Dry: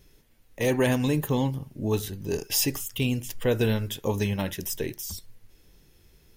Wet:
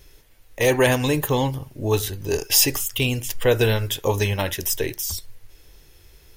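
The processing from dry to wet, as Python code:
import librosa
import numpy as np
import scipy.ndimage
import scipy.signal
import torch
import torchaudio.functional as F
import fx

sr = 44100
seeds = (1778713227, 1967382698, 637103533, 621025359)

y = fx.peak_eq(x, sr, hz=200.0, db=-12.0, octaves=1.1)
y = y * 10.0 ** (8.5 / 20.0)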